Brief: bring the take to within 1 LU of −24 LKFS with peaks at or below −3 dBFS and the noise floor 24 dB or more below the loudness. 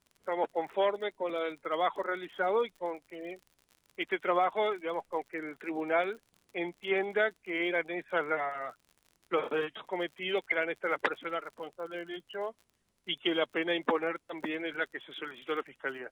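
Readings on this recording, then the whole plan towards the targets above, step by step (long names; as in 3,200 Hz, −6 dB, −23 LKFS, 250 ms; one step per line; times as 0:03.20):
crackle rate 47 per second; integrated loudness −33.5 LKFS; sample peak −14.0 dBFS; target loudness −24.0 LKFS
→ click removal
level +9.5 dB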